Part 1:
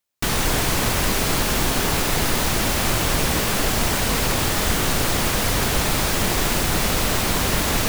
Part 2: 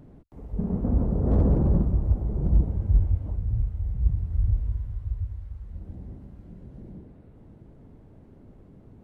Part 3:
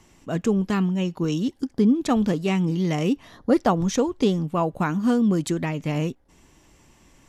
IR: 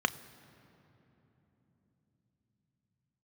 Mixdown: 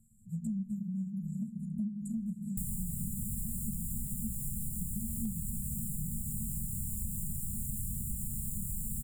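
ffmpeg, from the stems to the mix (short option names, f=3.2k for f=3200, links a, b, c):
-filter_complex "[0:a]adelay=2350,volume=-1dB,asplit=2[a][b];[b]volume=-14dB[c];[1:a]alimiter=limit=-22dB:level=0:latency=1,adelay=2350,volume=-8.5dB,asplit=2[d][e];[e]volume=-4dB[f];[2:a]equalizer=f=260:t=o:w=2.2:g=-2.5,flanger=delay=7.8:depth=7.3:regen=6:speed=0.78:shape=sinusoidal,volume=2dB,asplit=2[g][h];[h]volume=-8.5dB[i];[3:a]atrim=start_sample=2205[j];[c][f][i]amix=inputs=3:normalize=0[k];[k][j]afir=irnorm=-1:irlink=0[l];[a][d][g][l]amix=inputs=4:normalize=0,afftfilt=real='re*(1-between(b*sr/4096,230,6900))':imag='im*(1-between(b*sr/4096,230,6900))':win_size=4096:overlap=0.75,asoftclip=type=hard:threshold=-12dB,acompressor=threshold=-34dB:ratio=5"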